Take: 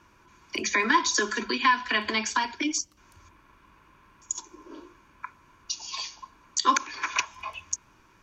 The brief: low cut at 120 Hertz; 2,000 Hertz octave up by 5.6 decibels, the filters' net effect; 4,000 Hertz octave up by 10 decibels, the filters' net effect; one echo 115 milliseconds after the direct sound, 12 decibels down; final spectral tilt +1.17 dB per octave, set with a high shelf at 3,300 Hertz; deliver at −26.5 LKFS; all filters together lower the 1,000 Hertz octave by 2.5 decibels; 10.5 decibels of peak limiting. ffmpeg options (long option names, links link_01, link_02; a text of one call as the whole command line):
ffmpeg -i in.wav -af "highpass=120,equalizer=frequency=1000:width_type=o:gain=-4.5,equalizer=frequency=2000:width_type=o:gain=4,highshelf=frequency=3300:gain=8,equalizer=frequency=4000:width_type=o:gain=6,alimiter=limit=-10dB:level=0:latency=1,aecho=1:1:115:0.251,volume=-3dB" out.wav